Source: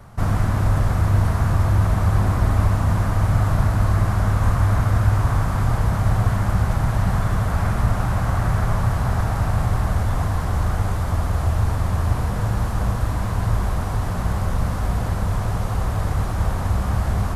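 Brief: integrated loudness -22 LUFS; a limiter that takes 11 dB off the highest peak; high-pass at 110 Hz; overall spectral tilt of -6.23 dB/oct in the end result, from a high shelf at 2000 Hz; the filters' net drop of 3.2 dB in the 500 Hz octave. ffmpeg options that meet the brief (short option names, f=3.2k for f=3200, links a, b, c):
-af "highpass=110,equalizer=f=500:t=o:g=-3.5,highshelf=f=2k:g=-7.5,volume=8.5dB,alimiter=limit=-13.5dB:level=0:latency=1"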